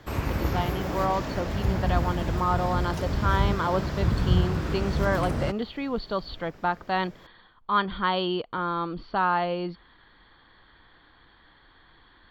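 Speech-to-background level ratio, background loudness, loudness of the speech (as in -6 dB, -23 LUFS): -0.5 dB, -28.5 LUFS, -29.0 LUFS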